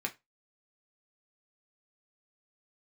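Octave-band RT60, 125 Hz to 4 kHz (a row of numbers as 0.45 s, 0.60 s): 0.25 s, 0.20 s, 0.20 s, 0.20 s, 0.20 s, 0.20 s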